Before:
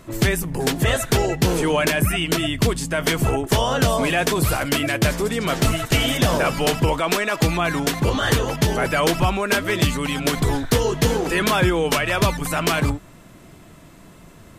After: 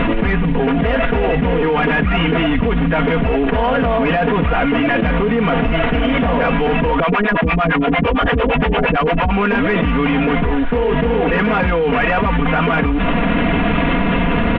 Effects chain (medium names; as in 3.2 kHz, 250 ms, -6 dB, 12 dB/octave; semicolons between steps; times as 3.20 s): CVSD coder 16 kbps; comb 4.2 ms, depth 87%; saturation -9 dBFS, distortion -21 dB; 7.00–9.31 s: harmonic tremolo 8.8 Hz, depth 100%, crossover 490 Hz; level flattener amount 100%